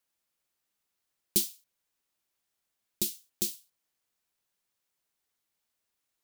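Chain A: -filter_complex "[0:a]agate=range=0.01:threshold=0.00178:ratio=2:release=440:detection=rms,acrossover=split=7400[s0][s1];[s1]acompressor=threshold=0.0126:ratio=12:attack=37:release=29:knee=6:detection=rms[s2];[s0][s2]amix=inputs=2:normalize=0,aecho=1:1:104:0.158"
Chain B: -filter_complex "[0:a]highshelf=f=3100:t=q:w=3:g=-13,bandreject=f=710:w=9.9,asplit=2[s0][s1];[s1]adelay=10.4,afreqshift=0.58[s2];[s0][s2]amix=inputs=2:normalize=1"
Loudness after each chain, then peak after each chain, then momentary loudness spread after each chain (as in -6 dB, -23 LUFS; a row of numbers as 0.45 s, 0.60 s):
-35.5 LUFS, -44.5 LUFS; -11.0 dBFS, -22.0 dBFS; 11 LU, 8 LU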